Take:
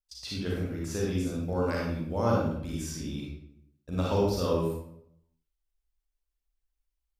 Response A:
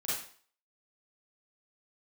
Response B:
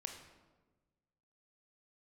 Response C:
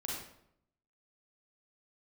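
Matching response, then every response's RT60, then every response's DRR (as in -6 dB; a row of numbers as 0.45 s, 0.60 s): C; 0.50 s, 1.3 s, 0.75 s; -9.5 dB, 3.5 dB, -4.0 dB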